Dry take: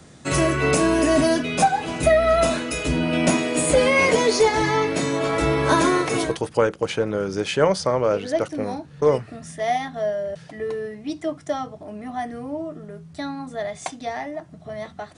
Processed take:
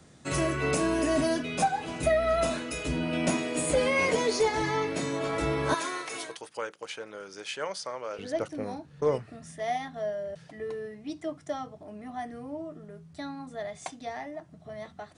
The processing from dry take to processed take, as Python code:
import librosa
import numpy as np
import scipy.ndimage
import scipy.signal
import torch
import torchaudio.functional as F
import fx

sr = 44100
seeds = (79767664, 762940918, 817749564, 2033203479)

y = fx.highpass(x, sr, hz=1400.0, slope=6, at=(5.74, 8.19))
y = y * librosa.db_to_amplitude(-8.0)